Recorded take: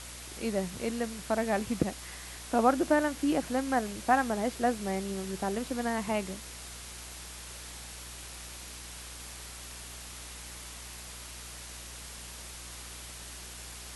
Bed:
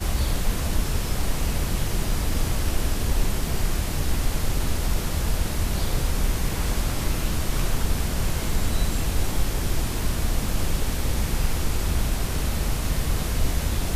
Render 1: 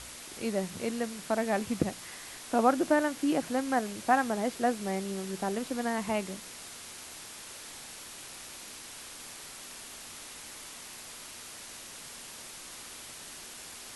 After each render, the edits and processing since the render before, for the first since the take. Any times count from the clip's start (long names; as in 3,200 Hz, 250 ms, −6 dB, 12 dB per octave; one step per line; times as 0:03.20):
hum removal 60 Hz, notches 3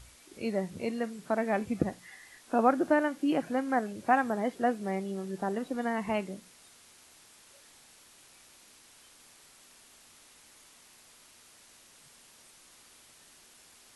noise reduction from a noise print 12 dB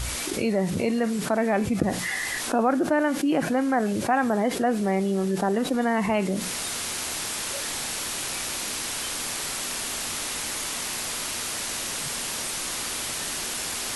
envelope flattener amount 70%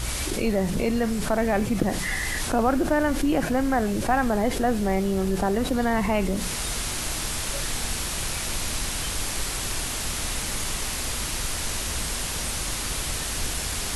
mix in bed −9.5 dB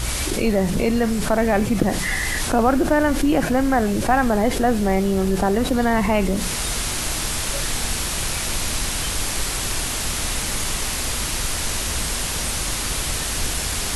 level +4.5 dB